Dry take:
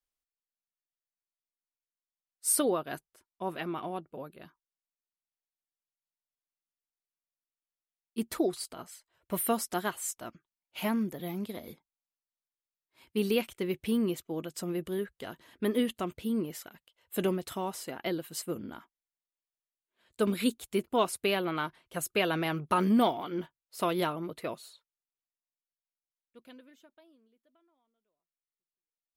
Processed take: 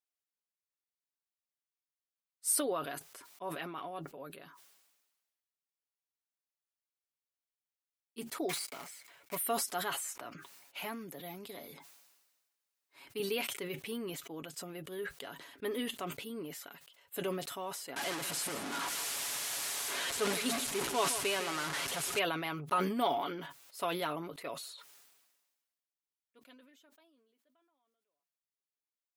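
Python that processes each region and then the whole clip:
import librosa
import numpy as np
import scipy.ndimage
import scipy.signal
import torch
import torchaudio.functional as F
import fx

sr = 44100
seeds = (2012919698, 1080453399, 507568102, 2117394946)

y = fx.chain(x, sr, fx.block_float(bits=3),
    fx.peak_eq(hz=2200.0, db=11.0, octaves=0.21), at=(8.49, 9.37))
y = fx.chain(y, sr, fx.notch(hz=3300.0, q=22.0),
    fx.band_squash(depth_pct=40), at=(10.04, 13.2))
y = fx.chain(y, sr, fx.delta_mod(bps=64000, step_db=-26.0),
    fx.echo_single(ms=161, db=-12.0), at=(17.96, 22.19))
y = fx.highpass(y, sr, hz=480.0, slope=6)
y = y + 0.48 * np.pad(y, (int(7.1 * sr / 1000.0), 0))[:len(y)]
y = fx.sustainer(y, sr, db_per_s=42.0)
y = y * 10.0 ** (-4.5 / 20.0)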